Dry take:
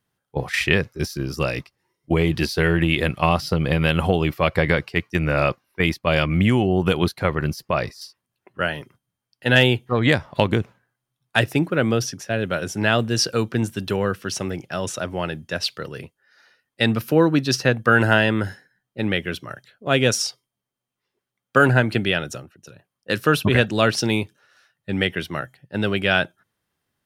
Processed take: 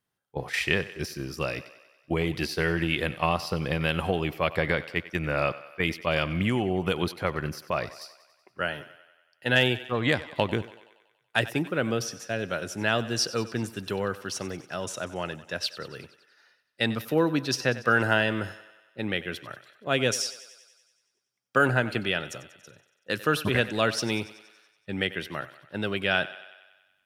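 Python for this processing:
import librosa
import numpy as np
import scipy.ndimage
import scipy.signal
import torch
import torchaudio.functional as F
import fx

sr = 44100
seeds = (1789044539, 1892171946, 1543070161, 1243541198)

p1 = fx.low_shelf(x, sr, hz=250.0, db=-5.0)
p2 = p1 + fx.echo_thinned(p1, sr, ms=94, feedback_pct=63, hz=320.0, wet_db=-16, dry=0)
y = p2 * 10.0 ** (-5.5 / 20.0)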